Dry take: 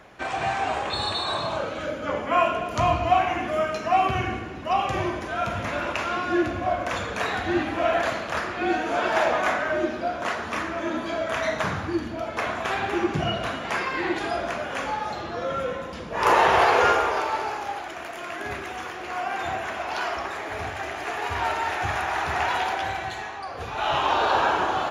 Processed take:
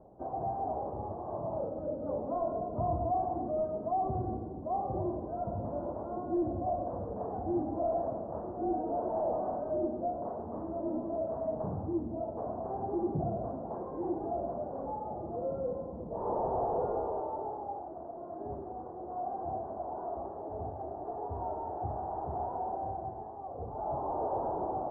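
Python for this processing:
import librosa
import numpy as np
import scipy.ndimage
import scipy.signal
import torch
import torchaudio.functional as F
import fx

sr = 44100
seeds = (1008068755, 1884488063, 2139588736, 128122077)

y = 10.0 ** (-20.5 / 20.0) * np.tanh(x / 10.0 ** (-20.5 / 20.0))
y = scipy.signal.sosfilt(scipy.signal.butter(6, 810.0, 'lowpass', fs=sr, output='sos'), y)
y = F.gain(torch.from_numpy(y), -4.0).numpy()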